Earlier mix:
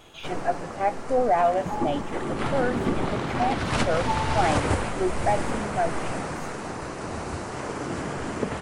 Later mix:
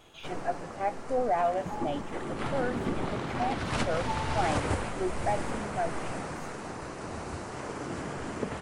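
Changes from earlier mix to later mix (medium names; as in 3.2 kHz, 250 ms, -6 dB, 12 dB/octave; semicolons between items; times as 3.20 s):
speech -6.0 dB; first sound -5.5 dB; second sound -7.0 dB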